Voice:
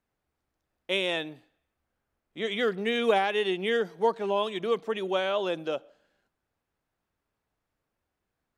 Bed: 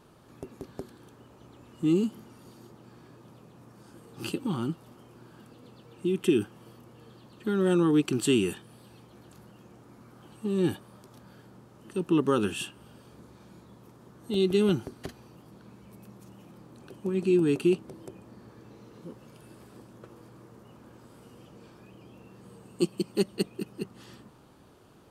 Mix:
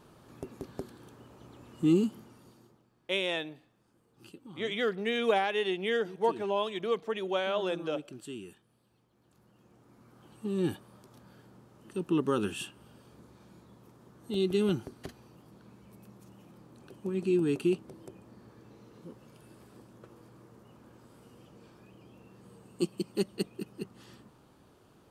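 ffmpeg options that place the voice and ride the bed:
-filter_complex "[0:a]adelay=2200,volume=0.708[s0];[1:a]volume=5.31,afade=t=out:st=1.91:d=0.98:silence=0.11885,afade=t=in:st=9.15:d=1.28:silence=0.188365[s1];[s0][s1]amix=inputs=2:normalize=0"

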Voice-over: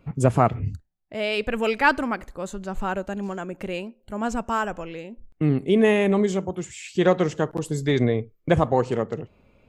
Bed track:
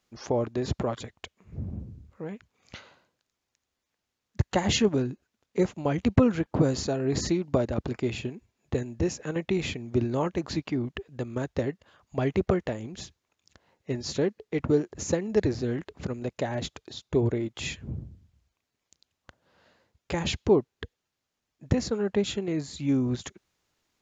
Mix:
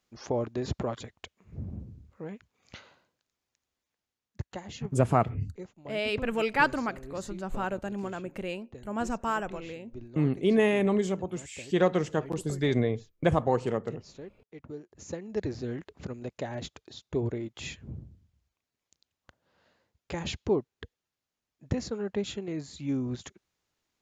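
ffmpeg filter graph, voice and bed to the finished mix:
-filter_complex "[0:a]adelay=4750,volume=0.562[s0];[1:a]volume=3.16,afade=t=out:st=3.74:d=0.94:silence=0.16788,afade=t=in:st=14.8:d=0.85:silence=0.223872[s1];[s0][s1]amix=inputs=2:normalize=0"

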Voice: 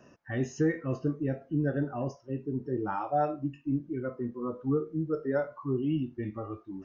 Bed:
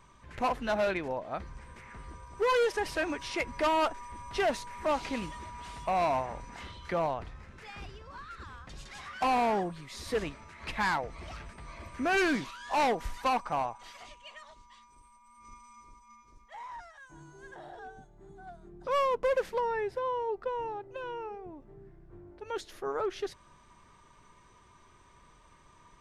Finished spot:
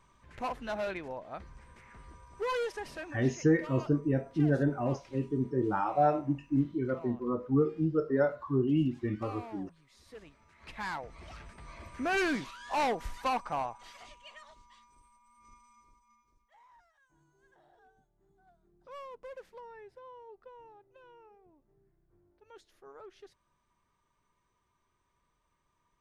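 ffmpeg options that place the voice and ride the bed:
-filter_complex "[0:a]adelay=2850,volume=1.26[s0];[1:a]volume=3.16,afade=t=out:st=2.54:d=0.83:silence=0.237137,afade=t=in:st=10.23:d=1.49:silence=0.158489,afade=t=out:st=14.46:d=2.14:silence=0.16788[s1];[s0][s1]amix=inputs=2:normalize=0"

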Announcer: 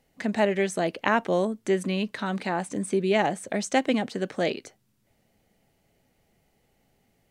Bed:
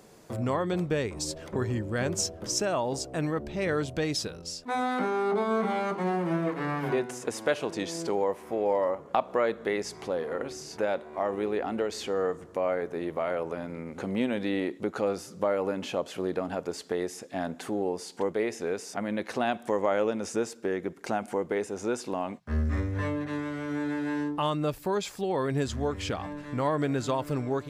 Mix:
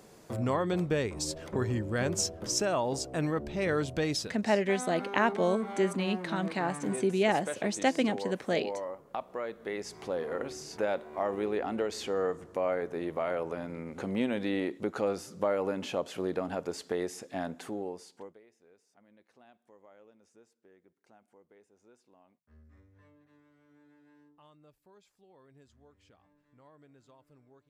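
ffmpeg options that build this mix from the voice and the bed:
-filter_complex "[0:a]adelay=4100,volume=0.668[s0];[1:a]volume=2.37,afade=t=out:st=4.13:d=0.24:silence=0.334965,afade=t=in:st=9.51:d=0.74:silence=0.375837,afade=t=out:st=17.29:d=1.11:silence=0.0334965[s1];[s0][s1]amix=inputs=2:normalize=0"

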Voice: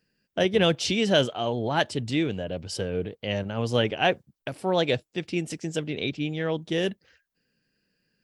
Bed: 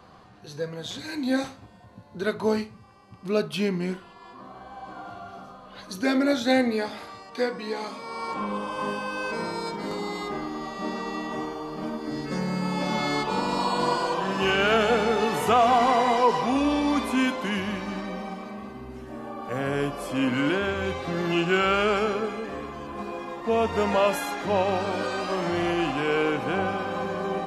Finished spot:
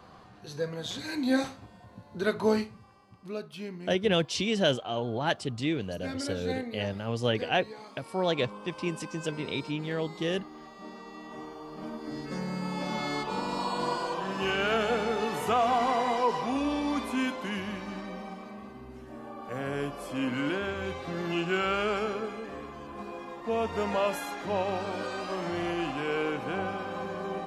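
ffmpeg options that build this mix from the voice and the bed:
-filter_complex "[0:a]adelay=3500,volume=0.631[s0];[1:a]volume=2.11,afade=t=out:st=2.6:d=0.8:silence=0.237137,afade=t=in:st=11.14:d=0.92:silence=0.421697[s1];[s0][s1]amix=inputs=2:normalize=0"

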